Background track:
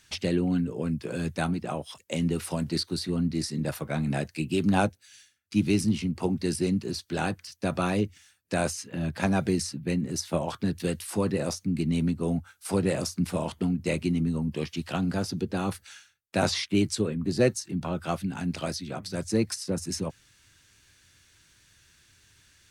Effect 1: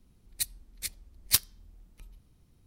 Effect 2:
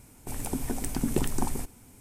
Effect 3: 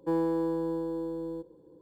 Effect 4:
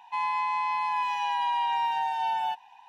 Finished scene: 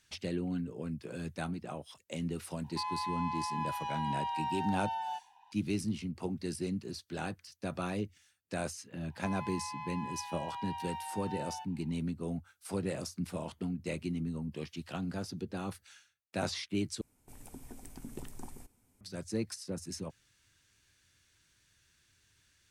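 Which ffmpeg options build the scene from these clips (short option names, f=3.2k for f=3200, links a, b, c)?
-filter_complex "[4:a]asplit=2[a][b];[0:a]volume=-9.5dB[c];[a]equalizer=f=2.2k:t=o:w=0.39:g=-8.5[d];[c]asplit=2[e][f];[e]atrim=end=17.014[g];[2:a]atrim=end=2,asetpts=PTS-STARTPTS,volume=-17.5dB[h];[f]atrim=start=19.006[i];[d]atrim=end=2.88,asetpts=PTS-STARTPTS,volume=-8.5dB,afade=t=in:d=0.004:c=hsin,afade=t=out:st=2.876:d=0.004:c=hsin,adelay=2640[j];[b]atrim=end=2.88,asetpts=PTS-STARTPTS,volume=-14.5dB,afade=t=in:d=0.004:c=hsin,afade=t=out:st=2.876:d=0.004:c=hsin,adelay=9100[k];[g][h]acrossfade=d=0.004:c1=hsin:c2=hsin[l];[l][i]acrossfade=d=0.004:c1=hsin:c2=hsin[m];[m][j][k]amix=inputs=3:normalize=0"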